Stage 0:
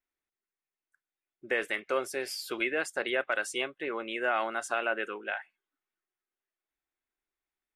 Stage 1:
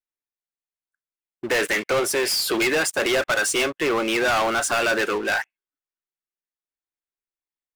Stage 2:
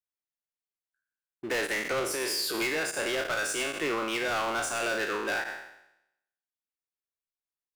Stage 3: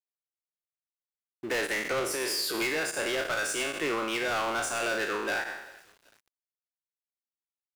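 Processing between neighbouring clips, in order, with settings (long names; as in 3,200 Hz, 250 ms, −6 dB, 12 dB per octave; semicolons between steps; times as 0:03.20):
leveller curve on the samples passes 5
peak hold with a decay on every bin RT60 0.82 s; brickwall limiter −15 dBFS, peak gain reduction 8 dB; level −8.5 dB
feedback echo with a high-pass in the loop 382 ms, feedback 52%, high-pass 310 Hz, level −23 dB; centre clipping without the shift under −53.5 dBFS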